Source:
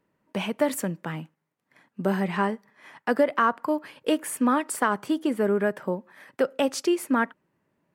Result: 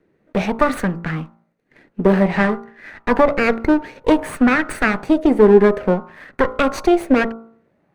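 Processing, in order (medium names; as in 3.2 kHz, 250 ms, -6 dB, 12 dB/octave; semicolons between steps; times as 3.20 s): comb filter that takes the minimum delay 0.48 ms; low-pass 2.1 kHz 6 dB/octave; de-hum 56.77 Hz, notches 26; loudness maximiser +15.5 dB; sweeping bell 0.54 Hz 370–1600 Hz +8 dB; trim -5.5 dB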